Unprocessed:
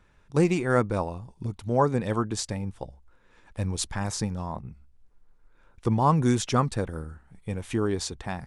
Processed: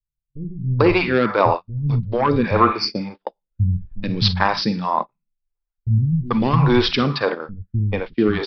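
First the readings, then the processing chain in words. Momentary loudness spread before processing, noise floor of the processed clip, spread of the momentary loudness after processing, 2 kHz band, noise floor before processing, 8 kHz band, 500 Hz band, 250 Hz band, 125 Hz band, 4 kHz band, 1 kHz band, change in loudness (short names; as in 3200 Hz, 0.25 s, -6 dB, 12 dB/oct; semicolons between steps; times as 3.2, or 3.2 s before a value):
16 LU, -83 dBFS, 13 LU, +11.5 dB, -60 dBFS, under -10 dB, +7.5 dB, +7.0 dB, +8.0 dB, +13.5 dB, +8.5 dB, +7.5 dB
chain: in parallel at +2 dB: negative-ratio compressor -22 dBFS, ratio -0.5; on the sum: bell 73 Hz -11 dB 0.43 oct; spectral repair 2.03–2.59, 1500–4300 Hz both; Schroeder reverb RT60 0.39 s, DRR 10.5 dB; soft clip -8.5 dBFS, distortion -19 dB; gate -25 dBFS, range -39 dB; phaser stages 2, 1.7 Hz, lowest notch 100–1000 Hz; dynamic EQ 1100 Hz, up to +5 dB, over -41 dBFS, Q 2.6; downsampling 11025 Hz; bands offset in time lows, highs 0.44 s, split 170 Hz; maximiser +8.5 dB; gain -1 dB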